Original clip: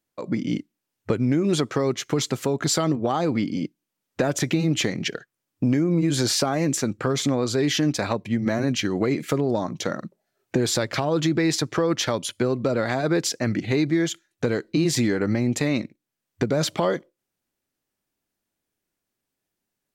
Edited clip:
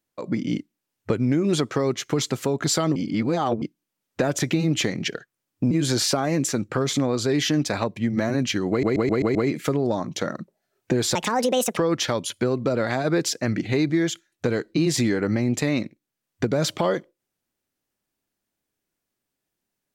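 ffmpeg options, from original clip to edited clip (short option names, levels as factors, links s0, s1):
-filter_complex "[0:a]asplit=11[s0][s1][s2][s3][s4][s5][s6][s7][s8][s9][s10];[s0]atrim=end=2.962[s11];[s1]atrim=start=2.958:end=3.622,asetpts=PTS-STARTPTS,areverse[s12];[s2]atrim=start=3.618:end=5.712[s13];[s3]atrim=start=5.998:end=9.122[s14];[s4]atrim=start=8.988:end=9.122[s15];[s5]atrim=start=8.988:end=9.122[s16];[s6]atrim=start=8.988:end=9.122[s17];[s7]atrim=start=8.988:end=9.122[s18];[s8]atrim=start=8.988:end=10.794[s19];[s9]atrim=start=10.79:end=11.76,asetpts=PTS-STARTPTS,asetrate=68796,aresample=44100,atrim=end_sample=27421,asetpts=PTS-STARTPTS[s20];[s10]atrim=start=11.756[s21];[s11][s12]acrossfade=d=0.004:c1=hsin:c2=hsin[s22];[s22][s13]acrossfade=d=0.004:c1=hsin:c2=hsin[s23];[s23][s14]acrossfade=d=0.004:c1=hsin:c2=hsin[s24];[s24][s15]acrossfade=d=0.004:c1=hsin:c2=hsin[s25];[s25][s16]acrossfade=d=0.004:c1=hsin:c2=hsin[s26];[s26][s17]acrossfade=d=0.004:c1=hsin:c2=hsin[s27];[s27][s18]acrossfade=d=0.004:c1=hsin:c2=hsin[s28];[s28][s19]acrossfade=d=0.004:c1=hsin:c2=hsin[s29];[s29][s20]acrossfade=d=0.004:c1=hsin:c2=hsin[s30];[s30][s21]acrossfade=d=0.004:c1=hsin:c2=hsin"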